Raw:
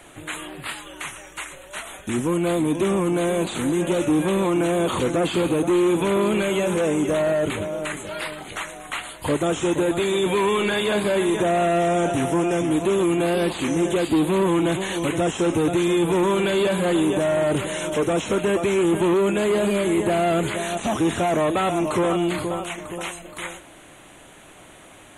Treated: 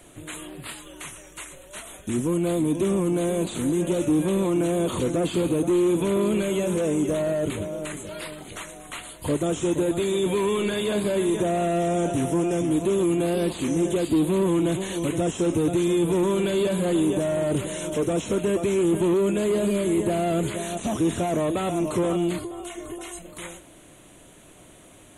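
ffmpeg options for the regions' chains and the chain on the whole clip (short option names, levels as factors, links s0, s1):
-filter_complex "[0:a]asettb=1/sr,asplit=3[s0][s1][s2];[s0]atrim=end=22.384[s3];[s1]atrim=start=22.38:end=23.19,asetpts=PTS-STARTPTS,afade=t=in:d=0.004:c=qsin,afade=t=out:st=0.806:d=0.004:c=qsin,bandreject=f=2500:w=22,acompressor=threshold=0.0251:ratio=4:attack=3.2:release=140:knee=1:detection=peak,aecho=1:1:2.8:0.97,atrim=end_sample=35721[s4];[s2]atrim=start=23.186[s5];[s3][s4]acrossfade=d=0.004:c1=hsin:c2=qsin[s6];[s6][s5]acrossfade=d=0.004:c1=qsin:c2=hsin,equalizer=f=1600:w=0.49:g=-9,bandreject=f=810:w=12"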